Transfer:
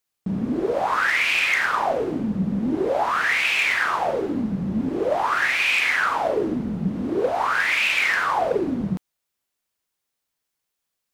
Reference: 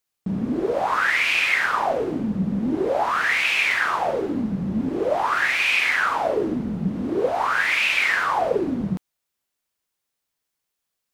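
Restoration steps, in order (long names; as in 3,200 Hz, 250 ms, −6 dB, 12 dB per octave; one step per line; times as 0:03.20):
clipped peaks rebuilt −13.5 dBFS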